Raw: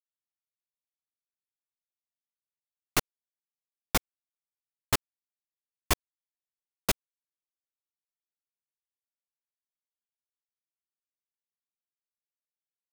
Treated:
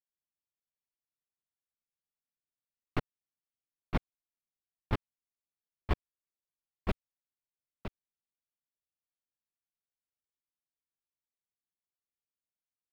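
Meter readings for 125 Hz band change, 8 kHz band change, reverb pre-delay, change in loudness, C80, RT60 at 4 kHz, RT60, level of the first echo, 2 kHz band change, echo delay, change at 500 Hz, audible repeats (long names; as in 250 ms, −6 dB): +1.5 dB, below −30 dB, no reverb audible, −8.5 dB, no reverb audible, no reverb audible, no reverb audible, −9.0 dB, −10.0 dB, 963 ms, −4.0 dB, 1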